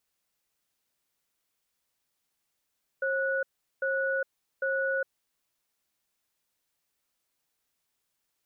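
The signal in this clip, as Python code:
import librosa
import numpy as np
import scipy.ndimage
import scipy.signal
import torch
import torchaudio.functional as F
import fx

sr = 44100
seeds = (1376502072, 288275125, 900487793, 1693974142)

y = fx.cadence(sr, length_s=2.2, low_hz=538.0, high_hz=1470.0, on_s=0.41, off_s=0.39, level_db=-28.5)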